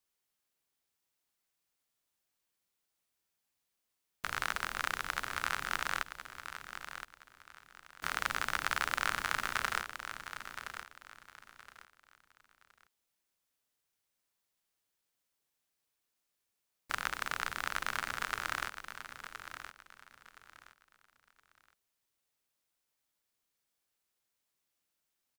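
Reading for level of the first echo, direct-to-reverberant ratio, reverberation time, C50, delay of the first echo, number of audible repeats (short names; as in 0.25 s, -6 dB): -10.0 dB, none, none, none, 1.019 s, 3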